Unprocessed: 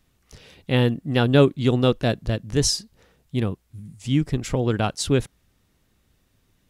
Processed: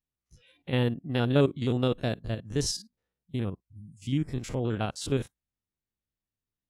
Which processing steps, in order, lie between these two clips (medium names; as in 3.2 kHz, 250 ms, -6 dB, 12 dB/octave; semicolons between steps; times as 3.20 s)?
spectrogram pixelated in time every 50 ms; spectral noise reduction 21 dB; trim -6.5 dB